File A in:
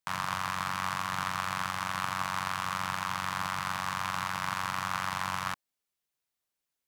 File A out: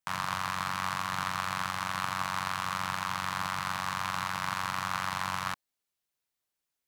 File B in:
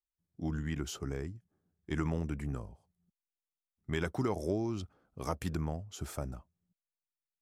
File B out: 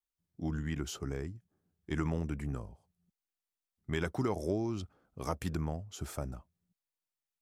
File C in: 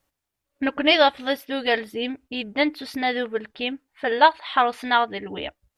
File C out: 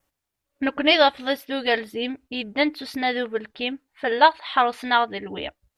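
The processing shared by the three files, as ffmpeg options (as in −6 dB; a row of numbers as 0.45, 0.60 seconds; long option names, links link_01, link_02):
-af "adynamicequalizer=threshold=0.00282:dfrequency=4100:dqfactor=7.7:tfrequency=4100:tqfactor=7.7:attack=5:release=100:ratio=0.375:range=1.5:mode=boostabove:tftype=bell"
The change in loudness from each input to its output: 0.0, 0.0, 0.0 LU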